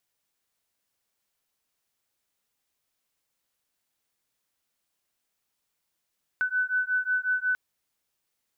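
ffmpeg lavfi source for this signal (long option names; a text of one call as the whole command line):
ffmpeg -f lavfi -i "aevalsrc='0.0447*(sin(2*PI*1500*t)+sin(2*PI*1505.5*t))':duration=1.14:sample_rate=44100" out.wav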